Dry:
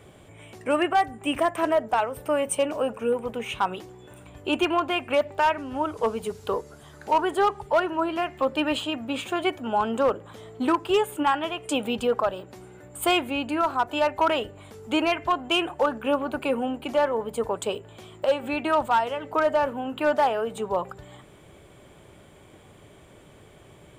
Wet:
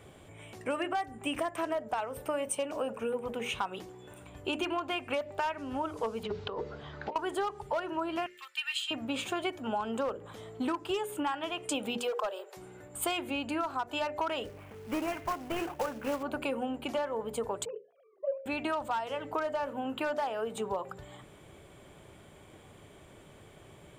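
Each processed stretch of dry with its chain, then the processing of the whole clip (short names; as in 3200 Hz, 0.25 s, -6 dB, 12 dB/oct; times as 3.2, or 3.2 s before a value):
6.23–7.16 notches 60/120/180/240/300/360/420/480 Hz + negative-ratio compressor -33 dBFS + LPF 4200 Hz 24 dB/oct
8.26–8.91 inverse Chebyshev high-pass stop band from 390 Hz, stop band 70 dB + comb 2.2 ms, depth 36%
11.97–12.57 steep high-pass 370 Hz 96 dB/oct + high shelf 8300 Hz +4.5 dB + hard clip -18 dBFS
14.45–16.23 CVSD 16 kbps + air absorption 170 m + short-mantissa float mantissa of 2-bit
17.65–18.46 sine-wave speech + LPF 1100 Hz
whole clip: notches 60/120/180/240/300/360/420/480/540/600 Hz; dynamic EQ 5700 Hz, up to +4 dB, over -44 dBFS, Q 1.1; compressor, threshold -27 dBFS; gain -2.5 dB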